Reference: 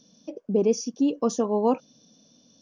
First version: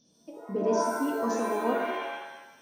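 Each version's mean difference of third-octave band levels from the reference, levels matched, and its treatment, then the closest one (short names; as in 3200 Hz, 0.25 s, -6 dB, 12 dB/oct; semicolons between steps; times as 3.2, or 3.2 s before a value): 12.0 dB: shimmer reverb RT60 1 s, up +7 st, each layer -2 dB, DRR 1 dB; gain -9 dB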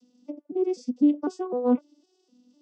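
7.0 dB: arpeggiated vocoder minor triad, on B3, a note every 0.253 s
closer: second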